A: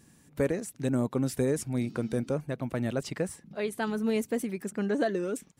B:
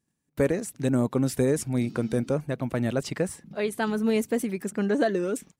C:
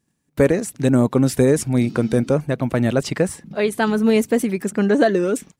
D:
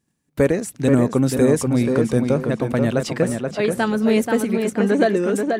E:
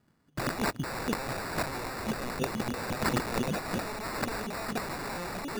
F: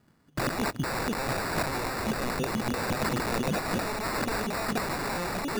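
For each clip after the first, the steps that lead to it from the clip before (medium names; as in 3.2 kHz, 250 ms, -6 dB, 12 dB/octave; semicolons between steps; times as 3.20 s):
gate -54 dBFS, range -25 dB; trim +4 dB
treble shelf 10 kHz -3.5 dB; trim +8 dB
tape echo 482 ms, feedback 34%, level -3.5 dB, low-pass 3.2 kHz; trim -1.5 dB
sample-and-hold 14×; integer overflow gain 19 dB; compressor with a negative ratio -29 dBFS, ratio -0.5; trim -2.5 dB
peak limiter -25 dBFS, peak gain reduction 9 dB; trim +5 dB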